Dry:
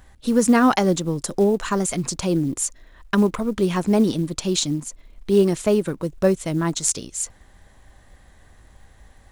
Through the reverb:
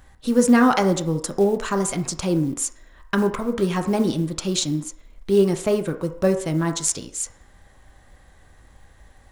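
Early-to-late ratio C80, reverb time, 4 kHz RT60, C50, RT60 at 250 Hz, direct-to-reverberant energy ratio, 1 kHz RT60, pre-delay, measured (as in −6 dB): 14.0 dB, 0.60 s, 0.65 s, 11.0 dB, 0.45 s, 5.5 dB, 0.60 s, 3 ms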